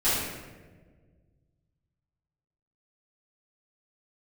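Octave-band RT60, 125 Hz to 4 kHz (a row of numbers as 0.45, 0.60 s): 2.7, 2.1, 1.8, 1.1, 1.1, 0.80 s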